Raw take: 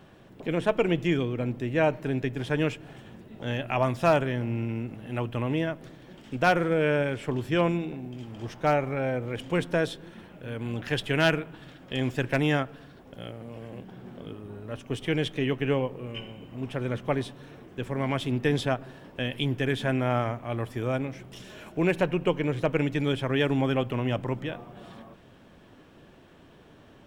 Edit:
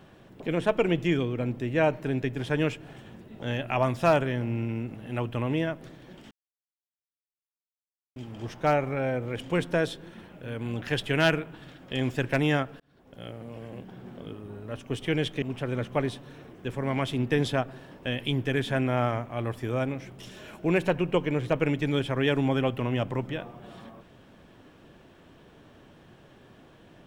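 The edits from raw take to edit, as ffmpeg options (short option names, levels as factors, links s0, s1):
-filter_complex "[0:a]asplit=5[s0][s1][s2][s3][s4];[s0]atrim=end=6.31,asetpts=PTS-STARTPTS,afade=t=out:st=6.306:d=0.004:c=hsin[s5];[s1]atrim=start=6.31:end=8.16,asetpts=PTS-STARTPTS,volume=0[s6];[s2]atrim=start=8.16:end=12.8,asetpts=PTS-STARTPTS,afade=t=in:d=0.004:c=hsin,afade=t=out:st=4.636:d=0.004:c=hsin[s7];[s3]atrim=start=12.8:end=15.422,asetpts=PTS-STARTPTS,afade=t=in:d=0.53[s8];[s4]atrim=start=16.548[s9];[s5][s6][s7][s8]concat=n=4:v=0:a=1[s10];[s10][s9]acrossfade=d=0.004:c1=hsin:c2=hsin"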